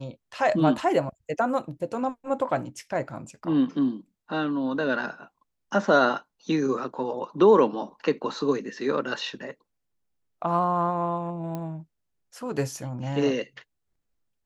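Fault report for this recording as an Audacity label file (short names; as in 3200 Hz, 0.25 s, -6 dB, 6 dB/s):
11.550000	11.550000	pop -20 dBFS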